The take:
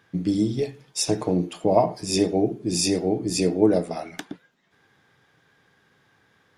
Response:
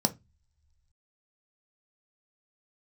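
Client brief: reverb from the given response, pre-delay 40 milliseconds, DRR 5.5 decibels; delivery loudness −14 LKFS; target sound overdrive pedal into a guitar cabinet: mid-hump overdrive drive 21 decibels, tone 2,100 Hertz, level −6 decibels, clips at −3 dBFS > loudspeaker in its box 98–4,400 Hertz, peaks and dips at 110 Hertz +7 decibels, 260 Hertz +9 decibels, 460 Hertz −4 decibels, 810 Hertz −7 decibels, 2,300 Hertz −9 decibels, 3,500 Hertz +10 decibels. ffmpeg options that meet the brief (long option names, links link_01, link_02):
-filter_complex "[0:a]asplit=2[link_01][link_02];[1:a]atrim=start_sample=2205,adelay=40[link_03];[link_02][link_03]afir=irnorm=-1:irlink=0,volume=-13.5dB[link_04];[link_01][link_04]amix=inputs=2:normalize=0,asplit=2[link_05][link_06];[link_06]highpass=frequency=720:poles=1,volume=21dB,asoftclip=type=tanh:threshold=-3dB[link_07];[link_05][link_07]amix=inputs=2:normalize=0,lowpass=frequency=2100:poles=1,volume=-6dB,highpass=98,equalizer=frequency=110:width_type=q:width=4:gain=7,equalizer=frequency=260:width_type=q:width=4:gain=9,equalizer=frequency=460:width_type=q:width=4:gain=-4,equalizer=frequency=810:width_type=q:width=4:gain=-7,equalizer=frequency=2300:width_type=q:width=4:gain=-9,equalizer=frequency=3500:width_type=q:width=4:gain=10,lowpass=frequency=4400:width=0.5412,lowpass=frequency=4400:width=1.3066,volume=0.5dB"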